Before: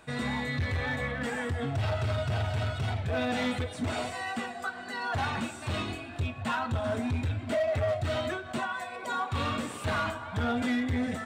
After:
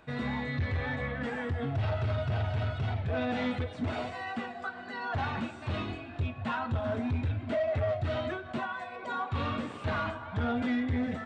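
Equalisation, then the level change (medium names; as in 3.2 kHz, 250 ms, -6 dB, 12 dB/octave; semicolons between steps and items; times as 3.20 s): tape spacing loss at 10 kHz 35 dB; treble shelf 2.9 kHz +11 dB; 0.0 dB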